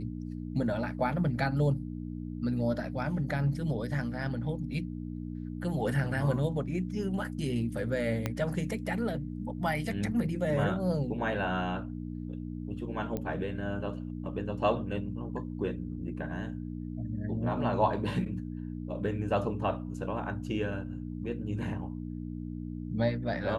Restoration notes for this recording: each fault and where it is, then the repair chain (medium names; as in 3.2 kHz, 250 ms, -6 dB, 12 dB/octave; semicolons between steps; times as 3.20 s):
hum 60 Hz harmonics 5 -38 dBFS
8.26 s: pop -16 dBFS
13.17 s: pop -21 dBFS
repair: de-click; de-hum 60 Hz, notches 5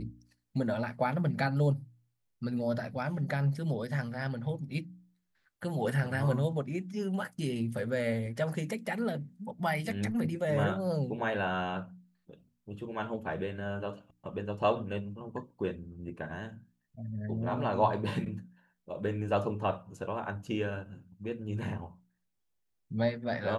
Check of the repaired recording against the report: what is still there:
8.26 s: pop